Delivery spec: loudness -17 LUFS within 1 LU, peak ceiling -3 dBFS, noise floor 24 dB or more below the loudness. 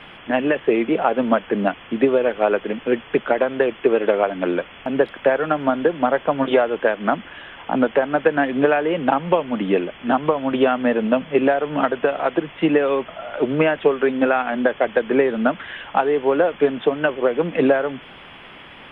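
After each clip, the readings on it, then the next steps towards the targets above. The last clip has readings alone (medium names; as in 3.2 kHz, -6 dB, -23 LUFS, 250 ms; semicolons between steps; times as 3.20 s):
noise floor -42 dBFS; noise floor target -44 dBFS; loudness -20.0 LUFS; peak level -4.0 dBFS; loudness target -17.0 LUFS
-> noise print and reduce 6 dB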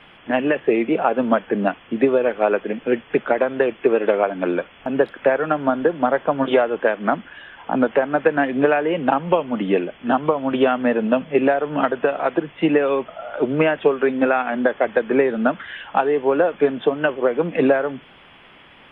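noise floor -48 dBFS; loudness -20.0 LUFS; peak level -4.5 dBFS; loudness target -17.0 LUFS
-> trim +3 dB; peak limiter -3 dBFS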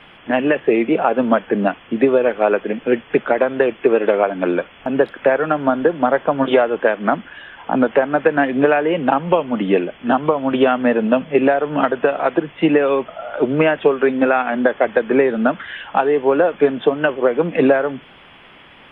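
loudness -17.5 LUFS; peak level -3.0 dBFS; noise floor -45 dBFS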